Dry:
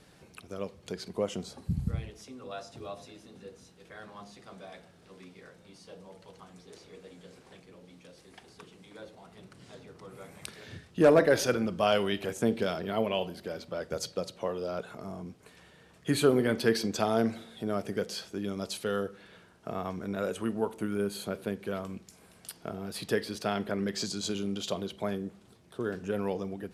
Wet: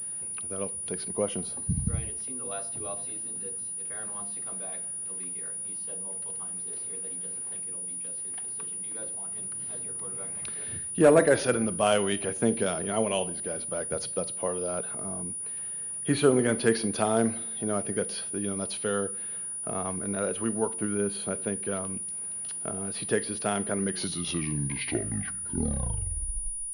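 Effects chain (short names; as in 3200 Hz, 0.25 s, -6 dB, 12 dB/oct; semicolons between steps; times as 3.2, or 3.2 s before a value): tape stop at the end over 2.94 s; pulse-width modulation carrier 9700 Hz; gain +2 dB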